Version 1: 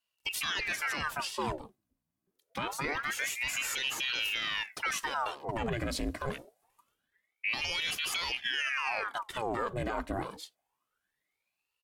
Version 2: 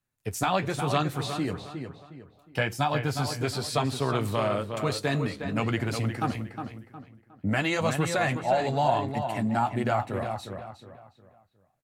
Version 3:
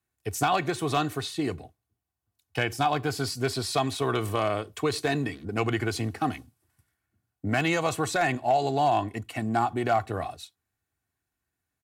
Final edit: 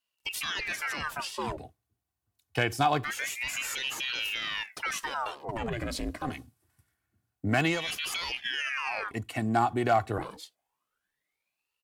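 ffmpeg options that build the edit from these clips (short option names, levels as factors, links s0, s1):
-filter_complex "[2:a]asplit=3[s0][s1][s2];[0:a]asplit=4[s3][s4][s5][s6];[s3]atrim=end=1.572[s7];[s0]atrim=start=1.568:end=3.042[s8];[s4]atrim=start=3.038:end=6.4[s9];[s1]atrim=start=6.16:end=7.89[s10];[s5]atrim=start=7.65:end=9.112[s11];[s2]atrim=start=9.108:end=10.182[s12];[s6]atrim=start=10.178[s13];[s7][s8]acrossfade=d=0.004:c1=hsin:c2=hsin[s14];[s14][s9]acrossfade=d=0.004:c1=hsin:c2=hsin[s15];[s15][s10]acrossfade=d=0.24:c1=tri:c2=tri[s16];[s16][s11]acrossfade=d=0.24:c1=tri:c2=tri[s17];[s17][s12]acrossfade=d=0.004:c1=hsin:c2=hsin[s18];[s18][s13]acrossfade=d=0.004:c1=hsin:c2=hsin"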